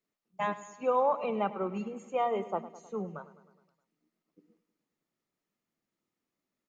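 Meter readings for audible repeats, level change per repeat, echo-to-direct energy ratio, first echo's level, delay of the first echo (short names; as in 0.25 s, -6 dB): 5, -4.5 dB, -14.0 dB, -16.0 dB, 0.104 s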